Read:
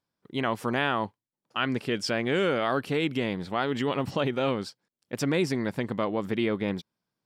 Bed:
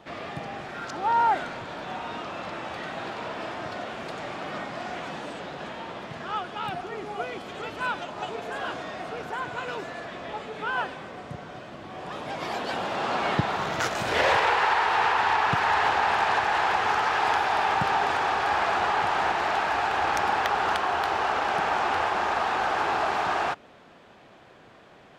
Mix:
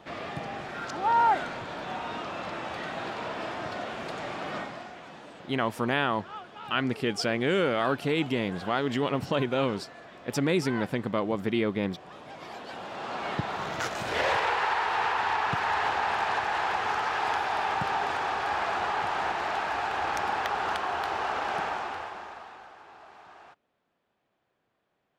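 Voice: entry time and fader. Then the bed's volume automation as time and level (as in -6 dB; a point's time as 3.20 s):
5.15 s, 0.0 dB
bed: 4.59 s -0.5 dB
4.94 s -10.5 dB
12.67 s -10.5 dB
13.65 s -4.5 dB
21.61 s -4.5 dB
22.79 s -25 dB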